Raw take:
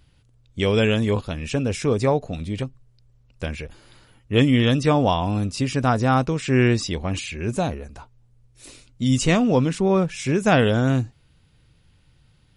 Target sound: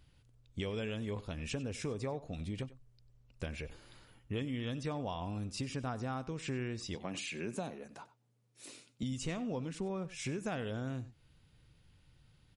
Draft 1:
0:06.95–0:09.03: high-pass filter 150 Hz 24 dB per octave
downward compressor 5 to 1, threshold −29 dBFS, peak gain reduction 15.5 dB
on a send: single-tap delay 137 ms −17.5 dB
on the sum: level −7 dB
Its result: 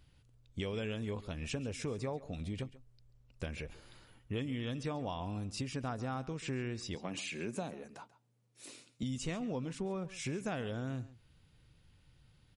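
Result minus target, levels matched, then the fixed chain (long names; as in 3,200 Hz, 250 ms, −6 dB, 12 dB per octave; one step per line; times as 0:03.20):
echo 42 ms late
0:06.95–0:09.03: high-pass filter 150 Hz 24 dB per octave
downward compressor 5 to 1, threshold −29 dBFS, peak gain reduction 15.5 dB
on a send: single-tap delay 95 ms −17.5 dB
on the sum: level −7 dB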